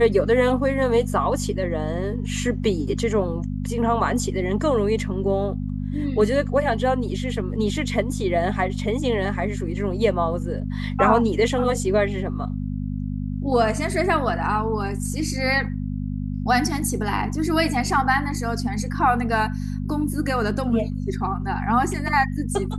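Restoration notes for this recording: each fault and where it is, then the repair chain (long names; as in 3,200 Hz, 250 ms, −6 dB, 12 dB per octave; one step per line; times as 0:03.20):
mains hum 50 Hz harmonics 5 −27 dBFS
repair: hum removal 50 Hz, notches 5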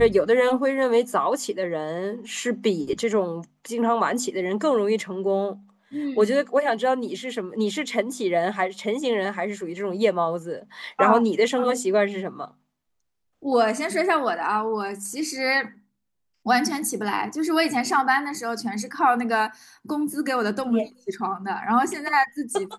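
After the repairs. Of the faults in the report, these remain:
none of them is left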